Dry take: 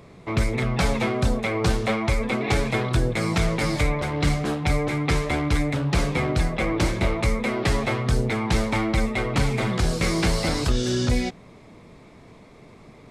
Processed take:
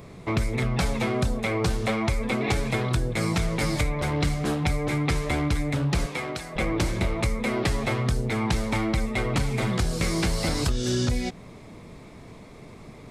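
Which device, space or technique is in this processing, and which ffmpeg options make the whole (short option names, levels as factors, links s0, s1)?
ASMR close-microphone chain: -filter_complex "[0:a]lowshelf=f=170:g=4,acompressor=threshold=0.0708:ratio=6,highshelf=f=7700:g=7.5,asettb=1/sr,asplit=3[s0][s1][s2];[s0]atrim=end=6.064[s3];[s1]atrim=start=6.06:end=6.56,asetpts=PTS-STARTPTS,afade=t=in:d=0.004:c=qsin,afade=t=out:st=0.496:d=0.004:c=qsin,highpass=f=600:p=1[s4];[s2]atrim=start=6.556[s5];[s3][s4]acrossfade=d=0.004:c1=hsin:c2=qsin[s6];[s6][s5]acrossfade=d=0.004:c1=qsin:c2=hsin,volume=1.19"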